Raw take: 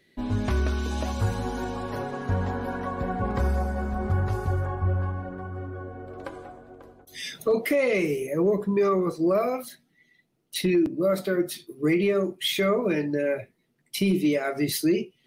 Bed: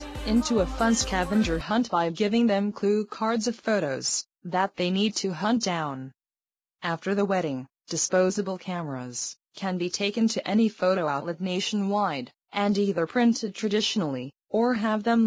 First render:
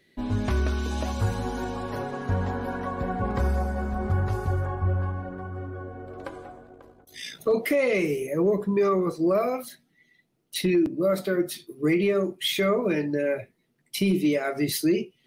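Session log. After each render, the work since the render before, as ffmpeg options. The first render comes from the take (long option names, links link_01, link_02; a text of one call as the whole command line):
ffmpeg -i in.wav -filter_complex "[0:a]asettb=1/sr,asplit=3[link_01][link_02][link_03];[link_01]atrim=end=6.674[link_04];[link_02]atrim=start=6.67:end=7.47,asetpts=PTS-STARTPTS,afade=type=in:duration=0.004:curve=qsin,afade=type=out:start_time=0.796:duration=0.004:curve=qsin,tremolo=f=57:d=0.519[link_05];[link_03]atrim=start=7.466[link_06];[link_04][link_05]acrossfade=duration=0.004:curve1=hsin:curve2=qsin[link_07];[link_07][link_06]acrossfade=duration=0.004:curve1=qsin:curve2=hsin" out.wav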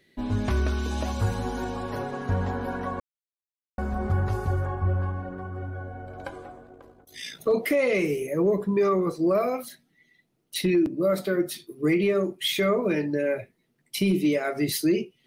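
ffmpeg -i in.wav -filter_complex "[0:a]asettb=1/sr,asplit=3[link_01][link_02][link_03];[link_01]atrim=end=5.624[link_04];[link_02]atrim=start=5.62:end=6.33,asetpts=PTS-STARTPTS,afade=type=in:duration=0.004:curve=qsin,afade=type=out:start_time=0.706:duration=0.004:curve=qsin,aecho=1:1:1.3:0.5,atrim=end_sample=31311[link_05];[link_03]atrim=start=6.326[link_06];[link_04][link_05]acrossfade=duration=0.004:curve1=hsin:curve2=qsin[link_07];[link_07][link_06]acrossfade=duration=0.004:curve1=qsin:curve2=hsin,asplit=3[link_08][link_09][link_10];[link_08]atrim=end=3,asetpts=PTS-STARTPTS,afade=type=out:start_time=2.996:duration=0.004:curve=hsin[link_11];[link_09]atrim=start=3:end=3.78,asetpts=PTS-STARTPTS,volume=0[link_12];[link_10]atrim=start=3.78,asetpts=PTS-STARTPTS,afade=type=in:duration=0.004:curve=hsin[link_13];[link_11][link_12][link_13]concat=n=3:v=0:a=1" out.wav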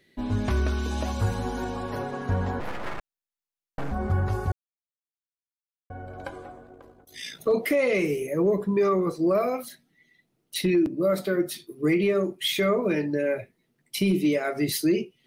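ffmpeg -i in.wav -filter_complex "[0:a]asettb=1/sr,asplit=3[link_01][link_02][link_03];[link_01]atrim=end=2.604[link_04];[link_02]atrim=start=2.6:end=3.92,asetpts=PTS-STARTPTS,afade=type=in:duration=0.004:curve=qsin,afade=type=out:start_time=1.316:duration=0.004:curve=qsin,aeval=exprs='abs(val(0))':channel_layout=same[link_05];[link_03]atrim=start=3.916[link_06];[link_04][link_05]acrossfade=duration=0.004:curve1=hsin:curve2=qsin[link_07];[link_07][link_06]acrossfade=duration=0.004:curve1=qsin:curve2=hsin,asplit=3[link_08][link_09][link_10];[link_08]atrim=end=4.52,asetpts=PTS-STARTPTS,afade=type=out:start_time=4.516:duration=0.004:curve=hsin[link_11];[link_09]atrim=start=4.52:end=5.9,asetpts=PTS-STARTPTS,volume=0[link_12];[link_10]atrim=start=5.9,asetpts=PTS-STARTPTS,afade=type=in:duration=0.004:curve=hsin[link_13];[link_11][link_12][link_13]concat=n=3:v=0:a=1" out.wav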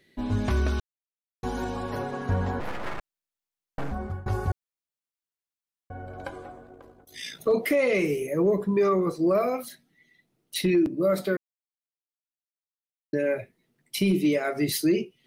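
ffmpeg -i in.wav -filter_complex "[0:a]asplit=6[link_01][link_02][link_03][link_04][link_05][link_06];[link_01]atrim=end=0.8,asetpts=PTS-STARTPTS,afade=type=out:start_time=0.796:duration=0.004:curve=hsin[link_07];[link_02]atrim=start=0.8:end=1.43,asetpts=PTS-STARTPTS,volume=0[link_08];[link_03]atrim=start=1.43:end=4.26,asetpts=PTS-STARTPTS,afade=type=in:duration=0.004:curve=hsin,afade=type=out:start_time=2.4:duration=0.43:silence=0.0707946[link_09];[link_04]atrim=start=4.26:end=11.37,asetpts=PTS-STARTPTS,afade=type=in:duration=0.004:curve=hsin:silence=0.0707946,afade=type=out:start_time=7.106:duration=0.004:curve=hsin[link_10];[link_05]atrim=start=11.37:end=13.13,asetpts=PTS-STARTPTS,volume=0[link_11];[link_06]atrim=start=13.13,asetpts=PTS-STARTPTS,afade=type=in:duration=0.004:curve=hsin[link_12];[link_07][link_08][link_09][link_10][link_11][link_12]concat=n=6:v=0:a=1" out.wav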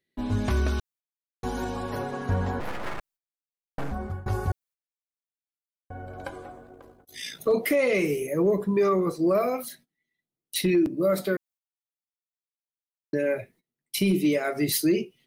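ffmpeg -i in.wav -af "agate=range=-20dB:threshold=-54dB:ratio=16:detection=peak,highshelf=frequency=8200:gain=6" out.wav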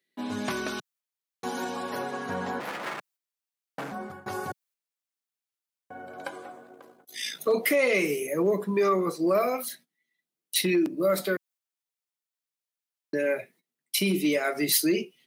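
ffmpeg -i in.wav -af "highpass=frequency=160:width=0.5412,highpass=frequency=160:width=1.3066,tiltshelf=frequency=700:gain=-3.5" out.wav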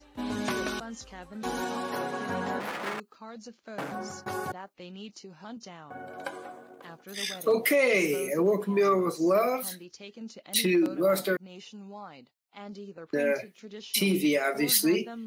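ffmpeg -i in.wav -i bed.wav -filter_complex "[1:a]volume=-18.5dB[link_01];[0:a][link_01]amix=inputs=2:normalize=0" out.wav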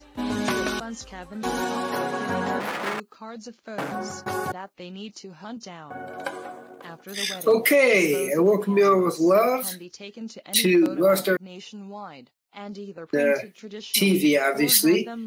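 ffmpeg -i in.wav -af "volume=5.5dB" out.wav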